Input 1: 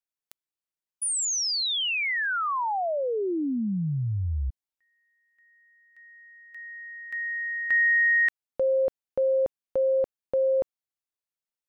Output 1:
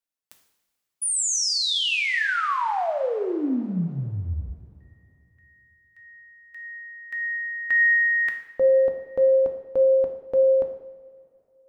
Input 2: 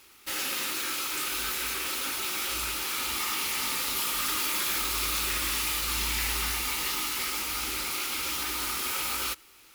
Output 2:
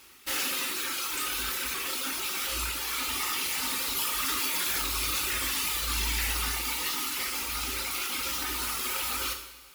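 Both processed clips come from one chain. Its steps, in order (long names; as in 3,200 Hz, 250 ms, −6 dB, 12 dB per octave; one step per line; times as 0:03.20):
reverb reduction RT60 2 s
coupled-rooms reverb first 0.71 s, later 2.8 s, from −15 dB, DRR 3.5 dB
level +1.5 dB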